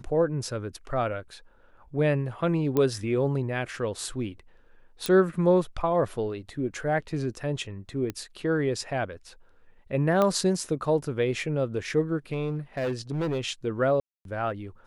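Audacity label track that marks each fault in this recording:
2.770000	2.770000	pop -13 dBFS
5.060000	5.060000	pop
8.100000	8.100000	pop -18 dBFS
10.220000	10.220000	pop -12 dBFS
12.330000	13.450000	clipped -24.5 dBFS
14.000000	14.250000	dropout 252 ms

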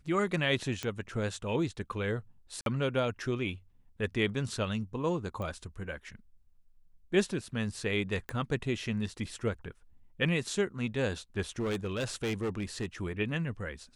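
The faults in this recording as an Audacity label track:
0.830000	0.830000	pop -19 dBFS
2.610000	2.660000	dropout 52 ms
5.420000	5.420000	pop -27 dBFS
8.290000	8.290000	pop -24 dBFS
11.590000	12.860000	clipped -28.5 dBFS

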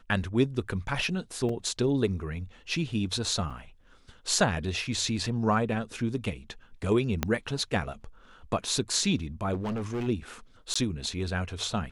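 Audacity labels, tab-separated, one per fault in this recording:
1.490000	1.490000	dropout 3.9 ms
3.500000	3.510000	dropout 5.5 ms
7.230000	7.230000	pop -10 dBFS
9.530000	10.080000	clipped -28 dBFS
10.740000	10.760000	dropout 15 ms

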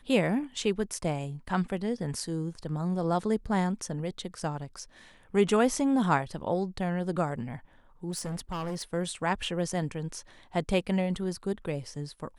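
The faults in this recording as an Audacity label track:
8.100000	8.830000	clipped -30.5 dBFS

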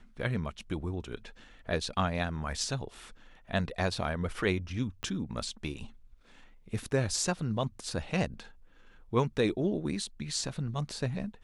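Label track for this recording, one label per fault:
5.030000	5.030000	pop -24 dBFS

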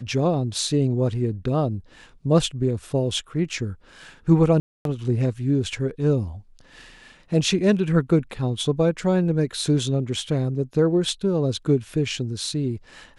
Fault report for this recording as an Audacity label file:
4.600000	4.850000	dropout 252 ms

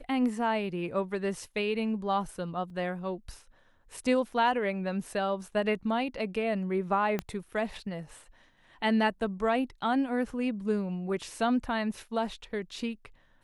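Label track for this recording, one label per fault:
2.700000	2.700000	dropout 3.5 ms
7.190000	7.190000	pop -17 dBFS

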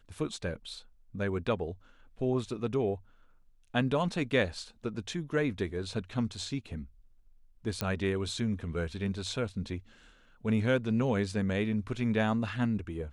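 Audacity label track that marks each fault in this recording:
7.810000	7.810000	pop -16 dBFS

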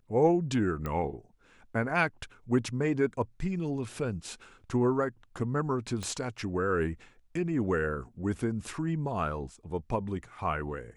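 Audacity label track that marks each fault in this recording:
0.860000	0.860000	pop -21 dBFS
6.030000	6.030000	pop -22 dBFS

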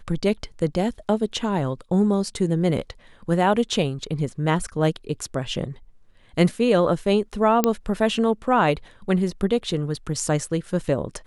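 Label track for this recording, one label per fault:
7.640000	7.640000	pop -4 dBFS

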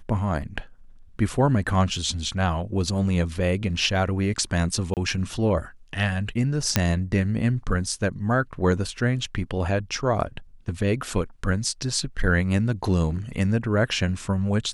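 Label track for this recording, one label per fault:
4.940000	4.970000	dropout 28 ms
6.760000	6.760000	pop -3 dBFS

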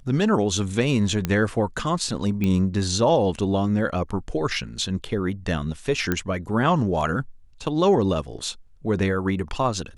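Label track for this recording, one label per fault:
1.250000	1.250000	pop -10 dBFS
2.440000	2.440000	pop -13 dBFS
6.120000	6.120000	pop -9 dBFS

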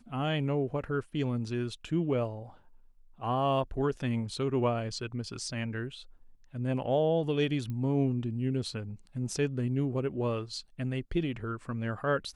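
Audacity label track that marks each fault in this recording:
7.700000	7.700000	pop -27 dBFS

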